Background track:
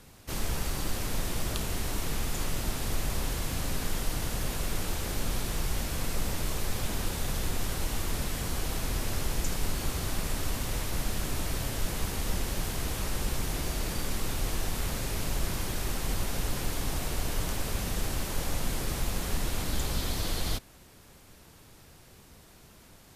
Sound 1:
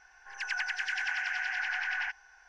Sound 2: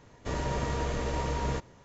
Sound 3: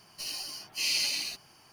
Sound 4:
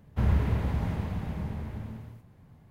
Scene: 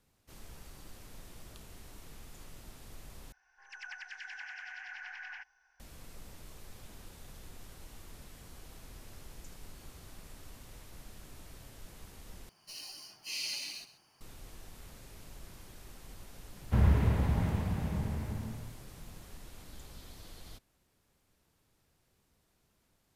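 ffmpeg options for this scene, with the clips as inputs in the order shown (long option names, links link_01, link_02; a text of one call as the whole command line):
ffmpeg -i bed.wav -i cue0.wav -i cue1.wav -i cue2.wav -i cue3.wav -filter_complex "[0:a]volume=-19.5dB[link_01];[3:a]aecho=1:1:132:0.188[link_02];[link_01]asplit=3[link_03][link_04][link_05];[link_03]atrim=end=3.324[link_06];[1:a]atrim=end=2.48,asetpts=PTS-STARTPTS,volume=-12.5dB[link_07];[link_04]atrim=start=5.796:end=12.494[link_08];[link_02]atrim=end=1.72,asetpts=PTS-STARTPTS,volume=-9dB[link_09];[link_05]atrim=start=14.206[link_10];[4:a]atrim=end=2.7,asetpts=PTS-STARTPTS,volume=-0.5dB,afade=type=in:duration=0.004:curve=hsin,afade=type=out:start_time=2.696:duration=0.004:curve=hsin,adelay=16550[link_11];[link_06][link_07]acrossfade=duration=0.004:curve1=hsin:curve2=hsin[link_12];[link_12][link_08]acrossfade=duration=0.004:curve1=hsin:curve2=hsin[link_13];[link_13][link_09]acrossfade=duration=0.004:curve1=hsin:curve2=hsin[link_14];[link_14][link_10]acrossfade=duration=0.004:curve1=hsin:curve2=hsin[link_15];[link_15][link_11]amix=inputs=2:normalize=0" out.wav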